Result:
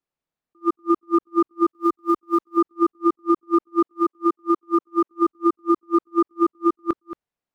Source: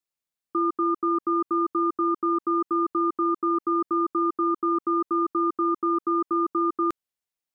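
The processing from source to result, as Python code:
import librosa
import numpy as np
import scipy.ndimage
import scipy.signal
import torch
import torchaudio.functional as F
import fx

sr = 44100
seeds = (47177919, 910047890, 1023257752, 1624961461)

y = fx.block_float(x, sr, bits=5)
y = fx.lowpass(y, sr, hz=1000.0, slope=6)
y = fx.tilt_eq(y, sr, slope=1.5, at=(1.68, 2.57))
y = fx.highpass(y, sr, hz=270.0, slope=12, at=(3.84, 5.08))
y = y + 10.0 ** (-13.0 / 20.0) * np.pad(y, (int(225 * sr / 1000.0), 0))[:len(y)]
y = fx.attack_slew(y, sr, db_per_s=530.0)
y = F.gain(torch.from_numpy(y), 9.0).numpy()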